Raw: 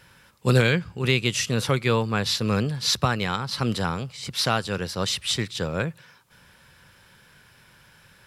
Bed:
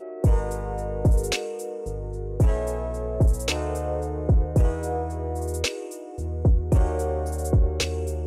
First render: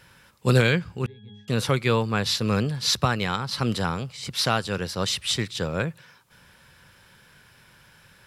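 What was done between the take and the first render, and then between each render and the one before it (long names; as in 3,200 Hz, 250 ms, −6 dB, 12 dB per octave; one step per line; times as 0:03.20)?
0:01.06–0:01.48: resonances in every octave G#, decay 0.68 s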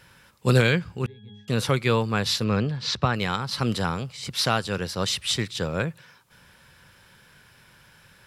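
0:02.44–0:03.14: high-frequency loss of the air 130 metres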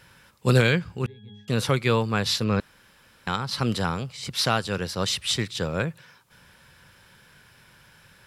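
0:02.60–0:03.27: fill with room tone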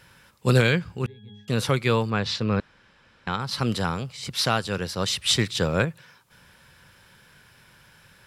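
0:02.10–0:03.40: high-frequency loss of the air 110 metres
0:05.26–0:05.85: clip gain +4 dB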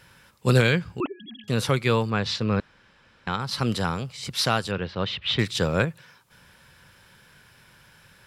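0:01.00–0:01.44: three sine waves on the formant tracks
0:04.71–0:05.39: Chebyshev low-pass filter 3,300 Hz, order 3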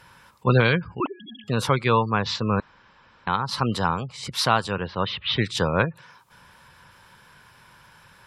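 gate on every frequency bin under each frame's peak −30 dB strong
parametric band 1,000 Hz +9.5 dB 0.67 octaves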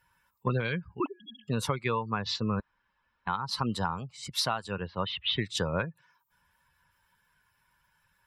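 spectral dynamics exaggerated over time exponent 1.5
downward compressor 12 to 1, threshold −25 dBFS, peak gain reduction 11.5 dB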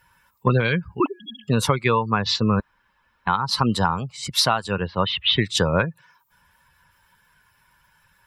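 level +10 dB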